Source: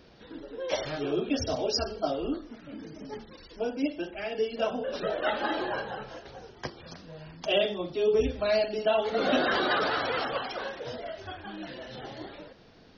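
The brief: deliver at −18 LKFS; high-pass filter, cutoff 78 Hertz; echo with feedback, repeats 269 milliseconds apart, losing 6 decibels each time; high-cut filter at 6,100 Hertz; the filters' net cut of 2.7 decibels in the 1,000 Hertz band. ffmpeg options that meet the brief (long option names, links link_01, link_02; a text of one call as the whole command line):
ffmpeg -i in.wav -af "highpass=78,lowpass=6100,equalizer=frequency=1000:width_type=o:gain=-4,aecho=1:1:269|538|807|1076|1345|1614:0.501|0.251|0.125|0.0626|0.0313|0.0157,volume=12dB" out.wav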